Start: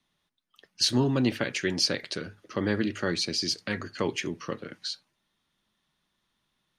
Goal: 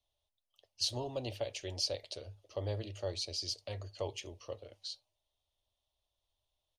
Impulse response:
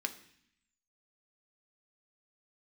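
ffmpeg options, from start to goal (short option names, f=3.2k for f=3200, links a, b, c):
-af "firequalizer=gain_entry='entry(100,0);entry(150,-29);entry(600,-1);entry(1500,-28);entry(2900,-9)':delay=0.05:min_phase=1"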